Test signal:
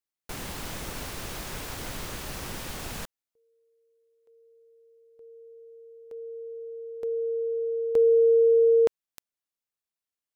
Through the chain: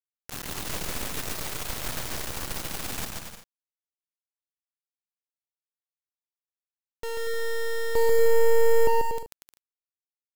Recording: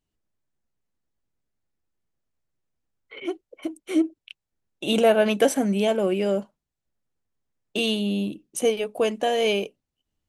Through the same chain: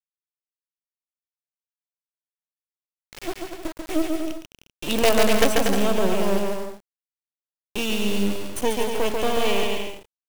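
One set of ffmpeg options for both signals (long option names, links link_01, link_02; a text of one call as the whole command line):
ffmpeg -i in.wav -af "acrusher=bits=3:dc=4:mix=0:aa=0.000001,aecho=1:1:140|238|306.6|354.6|388.2:0.631|0.398|0.251|0.158|0.1,acontrast=64,volume=-4dB" out.wav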